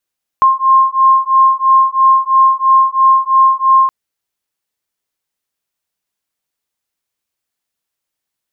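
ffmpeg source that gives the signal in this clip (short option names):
-f lavfi -i "aevalsrc='0.316*(sin(2*PI*1060*t)+sin(2*PI*1063*t))':d=3.47:s=44100"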